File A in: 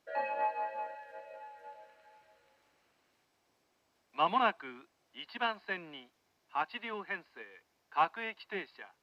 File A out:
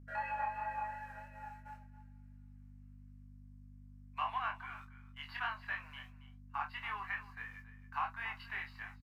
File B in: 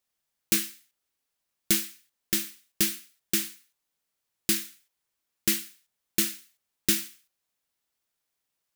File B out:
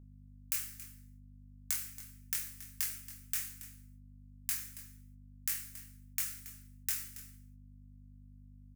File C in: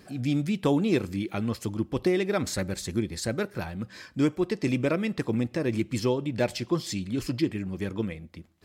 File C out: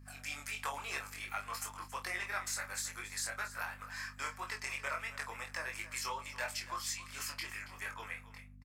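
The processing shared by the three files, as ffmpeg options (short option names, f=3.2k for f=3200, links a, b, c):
-filter_complex "[0:a]highpass=f=1k:w=0.5412,highpass=f=1k:w=1.3066,agate=range=-18dB:threshold=-58dB:ratio=16:detection=peak,equalizer=f=3.6k:w=1.3:g=-12,acompressor=threshold=-43dB:ratio=3,flanger=delay=20:depth=3.7:speed=2.9,aeval=exprs='val(0)+0.000794*(sin(2*PI*50*n/s)+sin(2*PI*2*50*n/s)/2+sin(2*PI*3*50*n/s)/3+sin(2*PI*4*50*n/s)/4+sin(2*PI*5*50*n/s)/5)':c=same,asplit=2[a][b];[b]adelay=28,volume=-9dB[c];[a][c]amix=inputs=2:normalize=0,asplit=2[d][e];[e]aecho=0:1:277:0.178[f];[d][f]amix=inputs=2:normalize=0,volume=9dB"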